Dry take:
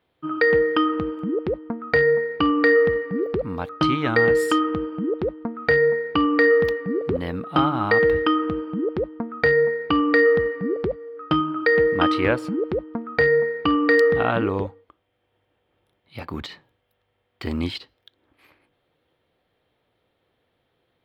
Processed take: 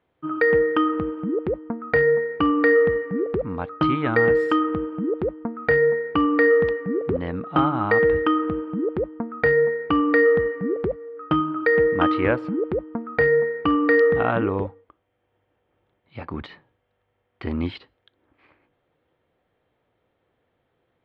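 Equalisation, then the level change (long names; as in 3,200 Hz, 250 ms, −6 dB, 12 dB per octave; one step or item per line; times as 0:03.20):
low-pass filter 2,300 Hz 12 dB per octave
0.0 dB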